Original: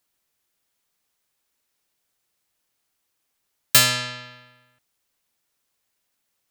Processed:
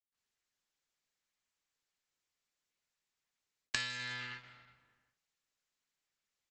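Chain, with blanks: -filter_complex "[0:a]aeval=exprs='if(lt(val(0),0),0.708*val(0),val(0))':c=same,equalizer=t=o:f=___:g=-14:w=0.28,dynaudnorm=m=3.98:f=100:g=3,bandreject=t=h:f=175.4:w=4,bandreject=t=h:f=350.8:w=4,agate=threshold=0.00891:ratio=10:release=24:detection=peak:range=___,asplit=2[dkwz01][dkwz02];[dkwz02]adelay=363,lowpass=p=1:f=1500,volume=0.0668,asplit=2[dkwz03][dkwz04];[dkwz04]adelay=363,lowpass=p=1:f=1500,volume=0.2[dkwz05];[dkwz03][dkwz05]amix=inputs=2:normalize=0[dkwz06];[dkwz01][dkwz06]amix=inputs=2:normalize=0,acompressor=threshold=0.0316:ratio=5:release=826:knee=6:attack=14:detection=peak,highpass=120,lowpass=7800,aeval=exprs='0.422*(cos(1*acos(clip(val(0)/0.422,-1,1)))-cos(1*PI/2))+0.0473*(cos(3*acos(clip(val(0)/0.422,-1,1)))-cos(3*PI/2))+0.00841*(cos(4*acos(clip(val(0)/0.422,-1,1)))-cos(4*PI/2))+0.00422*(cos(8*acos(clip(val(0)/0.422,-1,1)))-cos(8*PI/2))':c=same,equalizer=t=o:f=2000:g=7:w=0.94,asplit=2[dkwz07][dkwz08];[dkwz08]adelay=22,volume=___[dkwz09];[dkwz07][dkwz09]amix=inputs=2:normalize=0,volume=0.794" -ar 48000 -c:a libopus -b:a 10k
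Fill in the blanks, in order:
650, 0.0794, 0.2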